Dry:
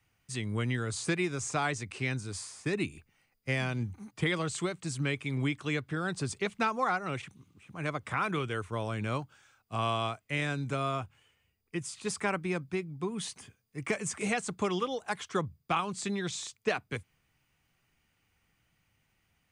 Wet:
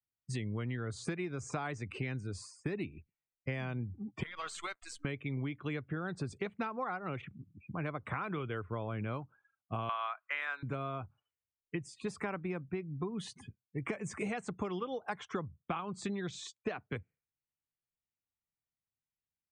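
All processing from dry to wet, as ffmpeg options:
-filter_complex "[0:a]asettb=1/sr,asplit=3[s0][s1][s2];[s0]atrim=end=4.234[s3];[s1]atrim=start=4.23:end=5.05,asetpts=PTS-STARTPTS,afade=t=in:d=0.004:c=qsin,afade=t=out:st=0.816:d=0.004:c=qsin,highpass=1200,acompressor=threshold=0.0158:ratio=20:attack=3.2:release=140:knee=1:detection=peak,acrusher=bits=8:dc=4:mix=0:aa=0.000001[s4];[s2]atrim=start=5.046[s5];[s3][s4]acrossfade=d=0.004:c1=hsin:c2=qsin[s6];[s6][s5]acrossfade=d=0.004:c1=qsin:c2=hsin,asettb=1/sr,asplit=3[s7][s8][s9];[s7]atrim=end=9.894[s10];[s8]atrim=start=9.89:end=10.63,asetpts=PTS-STARTPTS,afade=t=in:d=0.004:c=qsin,afade=t=out:st=0.736:d=0.004:c=qsin,highpass=990,equalizer=f=1300:t=o:w=2.2:g=13.5[s11];[s9]atrim=start=10.626[s12];[s10][s11]acrossfade=d=0.004:c1=hsin:c2=qsin[s13];[s13][s12]acrossfade=d=0.004:c1=qsin:c2=hsin,afftdn=nr=35:nf=-49,lowpass=f=1800:p=1,acompressor=threshold=0.00794:ratio=6,volume=2.24"

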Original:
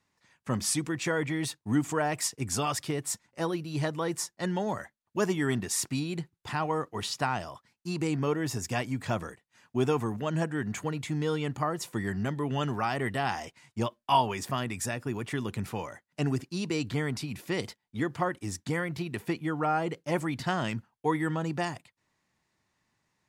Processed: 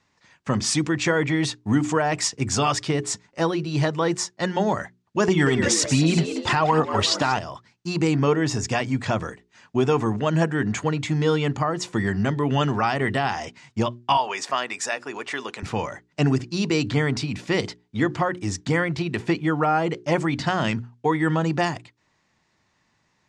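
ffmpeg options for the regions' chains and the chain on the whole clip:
-filter_complex "[0:a]asettb=1/sr,asplit=3[s0][s1][s2];[s0]atrim=end=5.284[s3];[s1]atrim=start=5.28:end=7.39,asetpts=PTS-STARTPTS,afade=t=in:d=0.004:c=qsin,afade=t=out:st=2.106:d=0.004:c=qsin,acontrast=71,asplit=5[s4][s5][s6][s7][s8];[s5]adelay=182,afreqshift=94,volume=0.282[s9];[s6]adelay=364,afreqshift=188,volume=0.112[s10];[s7]adelay=546,afreqshift=282,volume=0.0452[s11];[s8]adelay=728,afreqshift=376,volume=0.018[s12];[s4][s9][s10][s11][s12]amix=inputs=5:normalize=0,atrim=end_sample=93051,aphaser=in_gain=1:out_gain=1:delay=3.6:decay=0.42:speed=1.3:type=triangular[s13];[s2]atrim=start=7.386[s14];[s3][s13]acrossfade=d=0.004:c1=hsin:c2=qsin[s15];[s15][s14]acrossfade=d=0.004:c1=qsin:c2=hsin,asettb=1/sr,asplit=3[s16][s17][s18];[s16]atrim=end=14.174[s19];[s17]atrim=start=14.17:end=15.63,asetpts=PTS-STARTPTS,afade=t=in:d=0.004:c=qsin,afade=t=out:st=1.456:d=0.004:c=qsin,highpass=540,bandreject=f=3300:w=27[s20];[s18]atrim=start=15.626[s21];[s19][s20]acrossfade=d=0.004:c1=hsin:c2=qsin[s22];[s22][s21]acrossfade=d=0.004:c1=qsin:c2=hsin,lowpass=f=7200:w=0.5412,lowpass=f=7200:w=1.3066,bandreject=f=60:t=h:w=6,bandreject=f=120:t=h:w=6,bandreject=f=180:t=h:w=6,bandreject=f=240:t=h:w=6,bandreject=f=300:t=h:w=6,bandreject=f=360:t=h:w=6,bandreject=f=420:t=h:w=6,alimiter=limit=0.112:level=0:latency=1:release=211,volume=2.82"

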